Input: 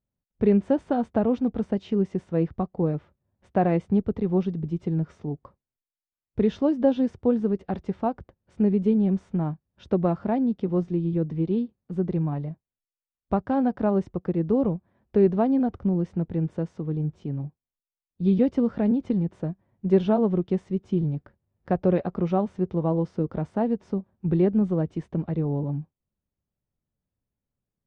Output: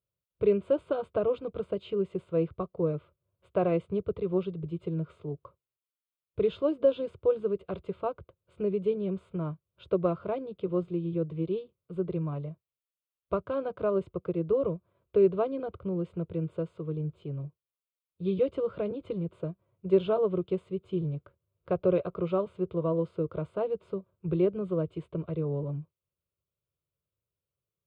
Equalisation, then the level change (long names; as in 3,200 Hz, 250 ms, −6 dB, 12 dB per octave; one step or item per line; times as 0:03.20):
high-pass filter 86 Hz
phaser with its sweep stopped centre 1,200 Hz, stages 8
0.0 dB